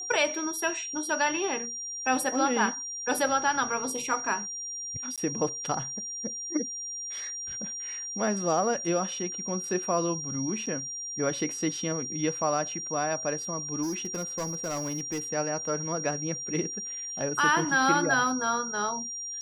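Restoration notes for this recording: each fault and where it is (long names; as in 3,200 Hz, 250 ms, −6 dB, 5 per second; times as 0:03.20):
whistle 5,700 Hz −34 dBFS
0:05.16–0:05.18: drop-out 17 ms
0:10.66–0:10.67: drop-out 5.8 ms
0:13.82–0:15.20: clipping −27.5 dBFS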